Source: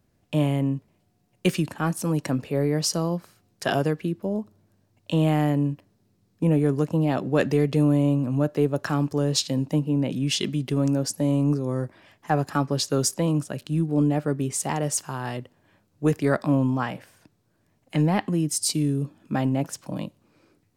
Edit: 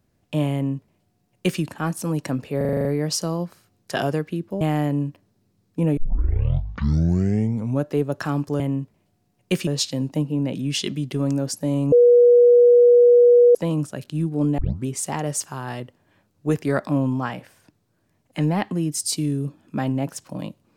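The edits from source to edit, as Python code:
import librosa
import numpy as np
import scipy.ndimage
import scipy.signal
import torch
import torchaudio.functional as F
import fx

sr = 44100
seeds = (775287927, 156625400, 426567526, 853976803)

y = fx.edit(x, sr, fx.duplicate(start_s=0.54, length_s=1.07, to_s=9.24),
    fx.stutter(start_s=2.57, slice_s=0.04, count=8),
    fx.cut(start_s=4.33, length_s=0.92),
    fx.tape_start(start_s=6.61, length_s=1.89),
    fx.bleep(start_s=11.49, length_s=1.63, hz=483.0, db=-9.0),
    fx.tape_start(start_s=14.15, length_s=0.28), tone=tone)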